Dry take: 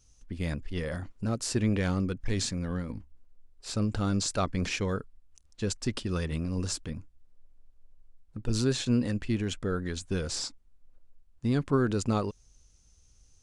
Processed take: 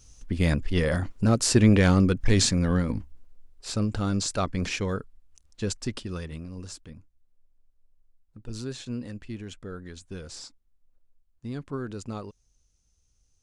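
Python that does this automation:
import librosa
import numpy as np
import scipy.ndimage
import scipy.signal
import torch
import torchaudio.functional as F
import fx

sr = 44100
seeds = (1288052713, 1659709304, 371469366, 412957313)

y = fx.gain(x, sr, db=fx.line((2.96, 9.0), (3.91, 1.5), (5.7, 1.5), (6.56, -8.0)))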